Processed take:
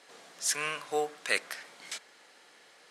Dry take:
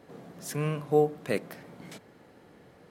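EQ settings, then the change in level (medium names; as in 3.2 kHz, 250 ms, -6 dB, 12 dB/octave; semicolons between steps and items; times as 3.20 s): frequency weighting ITU-R 468; dynamic bell 1.5 kHz, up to +5 dB, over -49 dBFS, Q 1.4; bass shelf 200 Hz -12 dB; 0.0 dB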